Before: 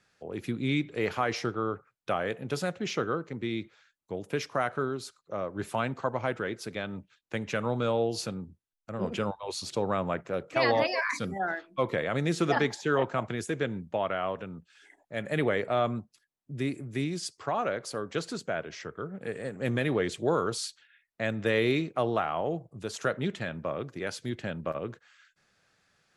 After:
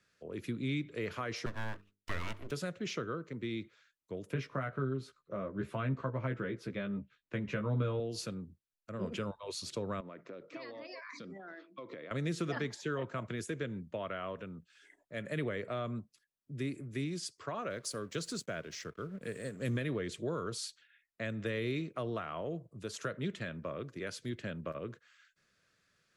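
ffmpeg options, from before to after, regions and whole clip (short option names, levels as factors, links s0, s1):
-filter_complex "[0:a]asettb=1/sr,asplit=3[s0][s1][s2];[s0]atrim=end=1.464[s3];[s1]atrim=start=1.46:end=2.51,asetpts=PTS-STARTPTS,afade=t=in:d=0.004:c=qsin,afade=t=out:st=1.046:d=0.004:c=qsin,highpass=58,aeval=exprs='abs(val(0))':c=same,bandreject=f=50:t=h:w=6,bandreject=f=100:t=h:w=6,bandreject=f=150:t=h:w=6,bandreject=f=200:t=h:w=6,bandreject=f=250:t=h:w=6,bandreject=f=300:t=h:w=6,bandreject=f=350:t=h:w=6,bandreject=f=400:t=h:w=6,bandreject=f=450:t=h:w=6[s4];[s2]atrim=start=2.506[s5];[s3][s4]acrossfade=d=0.004:c1=hsin:c2=qsin[s6];[s6][s5]acrossfade=d=0.004:c1=qsin:c2=hsin,asettb=1/sr,asplit=3[s7][s8][s9];[s7]atrim=end=4.334[s10];[s8]atrim=start=4.33:end=8,asetpts=PTS-STARTPTS,afade=t=in:d=0.004:c=qsin,afade=t=out:st=3.666:d=0.004:c=qsin,bass=f=250:g=5,treble=f=4000:g=-14,asplit=2[s11][s12];[s12]adelay=15,volume=0.631[s13];[s11][s13]amix=inputs=2:normalize=0,atrim=end_sample=161847[s14];[s9]atrim=start=7.996[s15];[s10][s14]acrossfade=d=0.004:c1=hsin:c2=qsin[s16];[s16][s15]acrossfade=d=0.004:c1=qsin:c2=hsin,asettb=1/sr,asplit=3[s17][s18][s19];[s17]atrim=end=10.004[s20];[s18]atrim=start=10:end=12.11,asetpts=PTS-STARTPTS,afade=t=in:d=0.004:c=qsin,afade=t=out:st=2.106:d=0.004:c=qsin,acompressor=threshold=0.0158:ratio=10:attack=3.2:release=140:knee=1:detection=peak,highpass=190,equalizer=f=300:t=q:w=4:g=5,equalizer=f=1600:t=q:w=4:g=-4,equalizer=f=2900:t=q:w=4:g=-4,lowpass=f=5500:w=0.5412,lowpass=f=5500:w=1.3066[s21];[s19]atrim=start=12.106[s22];[s20][s21]acrossfade=d=0.004:c1=hsin:c2=qsin[s23];[s23][s22]acrossfade=d=0.004:c1=qsin:c2=hsin,asettb=1/sr,asplit=3[s24][s25][s26];[s24]atrim=end=17.704[s27];[s25]atrim=start=17.7:end=19.77,asetpts=PTS-STARTPTS,afade=t=in:d=0.004:c=qsin,afade=t=out:st=2.066:d=0.004:c=qsin,bass=f=250:g=3,treble=f=4000:g=9,aeval=exprs='sgn(val(0))*max(abs(val(0))-0.0015,0)':c=same[s28];[s26]atrim=start=19.766[s29];[s27][s28]acrossfade=d=0.004:c1=hsin:c2=qsin[s30];[s30][s29]acrossfade=d=0.004:c1=qsin:c2=hsin,equalizer=f=800:t=o:w=0.27:g=-14,acrossover=split=190[s31][s32];[s32]acompressor=threshold=0.0282:ratio=3[s33];[s31][s33]amix=inputs=2:normalize=0,volume=0.596"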